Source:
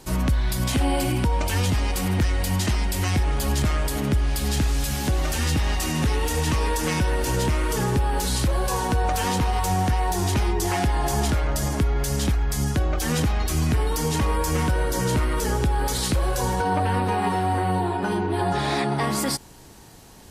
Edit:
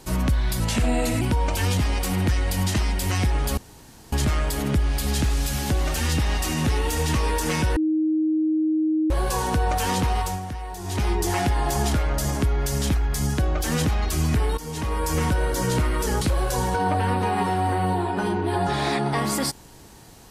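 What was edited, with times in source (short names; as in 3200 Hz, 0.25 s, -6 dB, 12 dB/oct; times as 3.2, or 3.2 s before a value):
0.6–1.14 speed 88%
3.5 insert room tone 0.55 s
7.14–8.48 bleep 313 Hz -18.5 dBFS
9.55–10.45 dip -10.5 dB, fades 0.24 s
13.95–14.51 fade in, from -14 dB
15.59–16.07 cut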